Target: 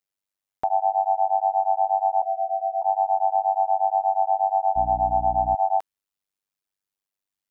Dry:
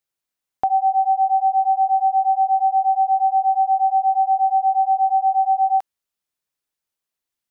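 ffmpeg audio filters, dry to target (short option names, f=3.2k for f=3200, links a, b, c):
-filter_complex "[0:a]tremolo=f=98:d=0.974,asettb=1/sr,asplit=3[a][b][c];[a]atrim=end=2.224[d];[b]atrim=start=2.22:end=2.82,asetpts=PTS-STARTPTS,afade=t=in:d=0.004:c=qsin,afade=t=out:st=0.596:d=0.004:c=qsin,asuperpass=centerf=690:order=8:qfactor=4.9[e];[c]atrim=start=2.816[f];[d][e]acrossfade=d=0.004:c1=hsin:c2=qsin[g];[g][f]acrossfade=d=0.004:c1=qsin:c2=hsin,asettb=1/sr,asplit=3[h][i][j];[h]atrim=end=4.764[k];[i]atrim=start=4.76:end=5.55,asetpts=PTS-STARTPTS,afade=t=in:d=0.004:c=qsin,afade=t=out:st=0.786:d=0.004:c=qsin,aeval=exprs='val(0)+0.0251*(sin(2*PI*60*n/s)+sin(2*PI*2*60*n/s)/2+sin(2*PI*3*60*n/s)/3+sin(2*PI*4*60*n/s)/4+sin(2*PI*5*60*n/s)/5)':c=same[l];[j]atrim=start=5.546[m];[k][l]acrossfade=d=0.004:c1=hsin:c2=qsin[n];[n][m]acrossfade=d=0.004:c1=qsin:c2=hsin"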